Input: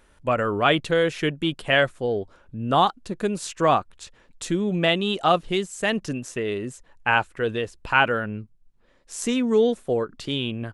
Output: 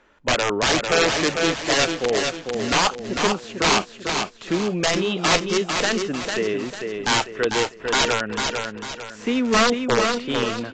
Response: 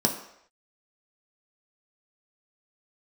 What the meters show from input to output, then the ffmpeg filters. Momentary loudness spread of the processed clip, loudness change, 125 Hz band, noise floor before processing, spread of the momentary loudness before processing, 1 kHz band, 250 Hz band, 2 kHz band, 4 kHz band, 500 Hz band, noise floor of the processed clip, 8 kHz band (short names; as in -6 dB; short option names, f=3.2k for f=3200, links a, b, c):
7 LU, +2.0 dB, -1.5 dB, -58 dBFS, 10 LU, +0.5 dB, +1.5 dB, +2.5 dB, +6.5 dB, +1.0 dB, -43 dBFS, +11.0 dB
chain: -filter_complex "[0:a]acrossover=split=190 2700:gain=0.224 1 0.158[a][b][c];[a][b][c]amix=inputs=3:normalize=0,acrossover=split=4400[d][e];[e]acompressor=threshold=-59dB:ratio=4:attack=1:release=60[f];[d][f]amix=inputs=2:normalize=0,highshelf=f=3.9k:g=12,aeval=exprs='(mod(5.62*val(0)+1,2)-1)/5.62':c=same,aecho=1:1:448|896|1344|1792|2240:0.562|0.219|0.0855|0.0334|0.013,volume=3dB" -ar 16000 -c:a aac -b:a 32k